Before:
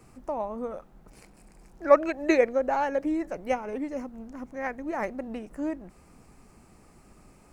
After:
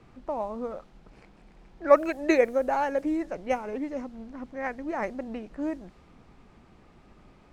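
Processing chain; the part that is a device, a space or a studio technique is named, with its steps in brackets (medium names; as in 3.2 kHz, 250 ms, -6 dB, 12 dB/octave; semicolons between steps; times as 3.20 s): cassette deck with a dynamic noise filter (white noise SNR 32 dB; level-controlled noise filter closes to 2.8 kHz, open at -20.5 dBFS)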